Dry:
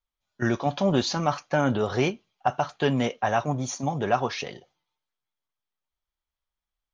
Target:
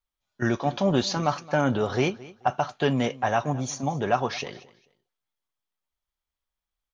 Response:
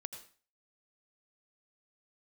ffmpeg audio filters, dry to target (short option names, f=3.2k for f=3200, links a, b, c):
-af "aecho=1:1:219|438:0.1|0.024"